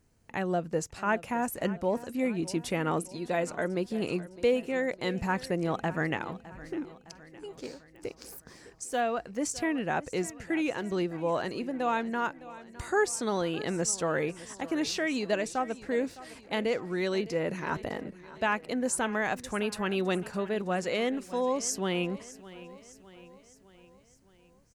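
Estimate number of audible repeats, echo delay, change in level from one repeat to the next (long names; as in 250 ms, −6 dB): 4, 610 ms, −5.5 dB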